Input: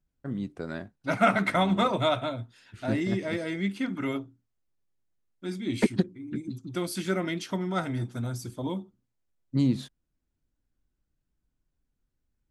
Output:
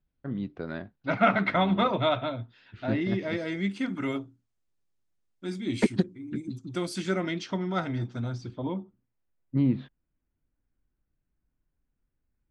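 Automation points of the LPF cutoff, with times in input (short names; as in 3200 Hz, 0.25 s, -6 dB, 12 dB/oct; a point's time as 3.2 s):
LPF 24 dB/oct
3.03 s 4200 Hz
3.85 s 9400 Hz
6.85 s 9400 Hz
7.52 s 5700 Hz
8.28 s 5700 Hz
8.76 s 2600 Hz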